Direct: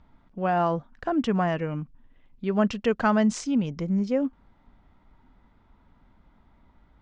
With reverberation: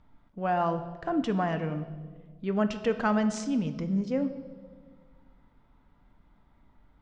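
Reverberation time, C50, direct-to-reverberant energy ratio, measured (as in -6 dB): 1.6 s, 12.0 dB, 8.0 dB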